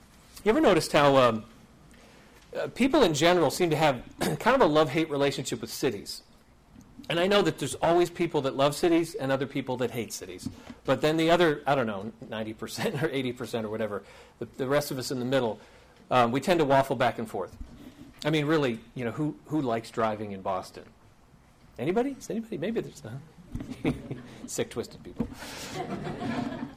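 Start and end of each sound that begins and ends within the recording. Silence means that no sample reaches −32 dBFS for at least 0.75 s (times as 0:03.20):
0:02.55–0:06.16
0:07.05–0:20.78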